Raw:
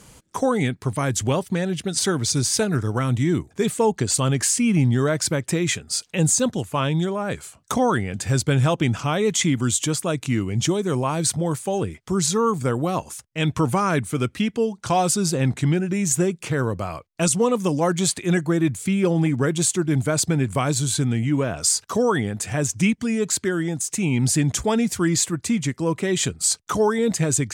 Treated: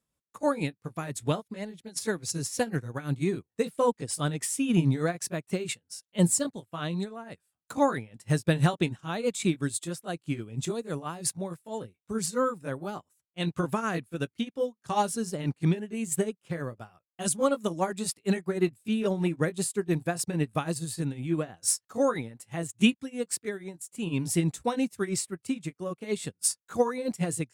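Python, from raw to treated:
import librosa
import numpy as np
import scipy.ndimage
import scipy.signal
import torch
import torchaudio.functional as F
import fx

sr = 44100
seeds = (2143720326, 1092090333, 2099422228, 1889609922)

y = fx.pitch_heads(x, sr, semitones=2.0)
y = fx.upward_expand(y, sr, threshold_db=-39.0, expansion=2.5)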